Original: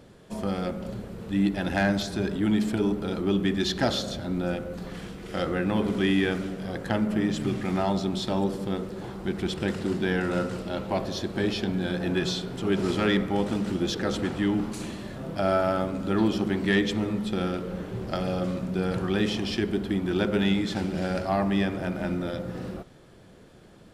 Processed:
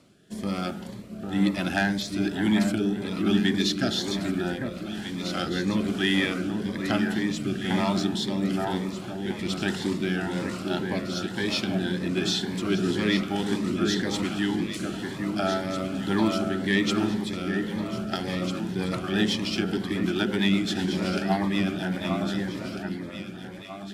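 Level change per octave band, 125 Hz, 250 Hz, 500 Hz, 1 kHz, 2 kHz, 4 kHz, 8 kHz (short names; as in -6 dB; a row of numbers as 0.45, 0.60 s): -0.5, +1.0, -2.0, -0.5, +2.5, +4.0, +4.5 dB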